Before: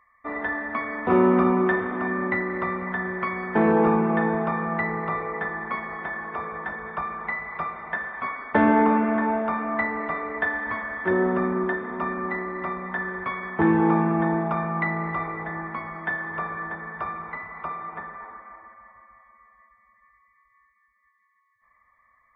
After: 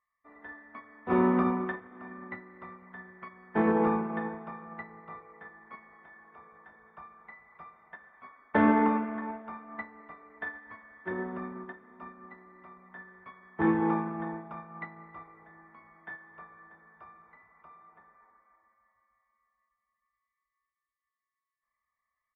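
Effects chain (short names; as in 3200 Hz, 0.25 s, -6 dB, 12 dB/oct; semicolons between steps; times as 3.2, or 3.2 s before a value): doubler 28 ms -9.5 dB; upward expander 2.5:1, over -29 dBFS; gain -3.5 dB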